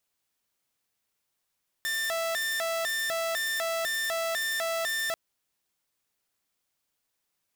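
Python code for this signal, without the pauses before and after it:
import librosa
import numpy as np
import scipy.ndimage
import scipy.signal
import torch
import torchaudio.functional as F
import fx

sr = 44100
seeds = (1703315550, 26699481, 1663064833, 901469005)

y = fx.siren(sr, length_s=3.29, kind='hi-lo', low_hz=661.0, high_hz=1790.0, per_s=2.0, wave='saw', level_db=-25.0)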